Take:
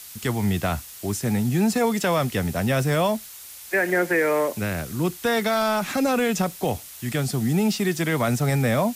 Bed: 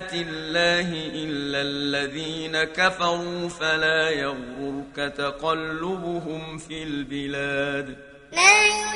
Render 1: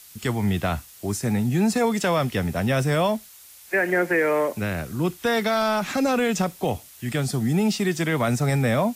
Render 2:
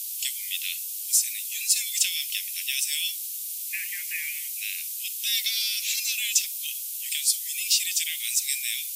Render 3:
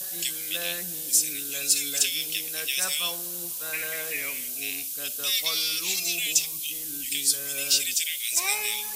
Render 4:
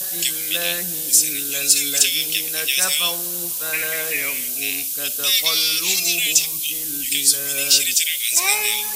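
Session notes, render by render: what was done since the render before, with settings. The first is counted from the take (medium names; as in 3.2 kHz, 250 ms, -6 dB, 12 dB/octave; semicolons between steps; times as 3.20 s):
noise print and reduce 6 dB
steep high-pass 2.4 kHz 48 dB/octave; tilt EQ +4 dB/octave
add bed -16.5 dB
trim +8 dB; peak limiter -2 dBFS, peak gain reduction 2 dB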